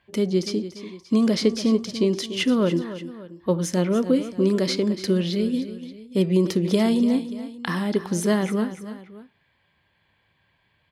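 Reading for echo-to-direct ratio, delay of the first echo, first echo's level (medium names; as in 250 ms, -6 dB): -12.0 dB, 290 ms, -13.0 dB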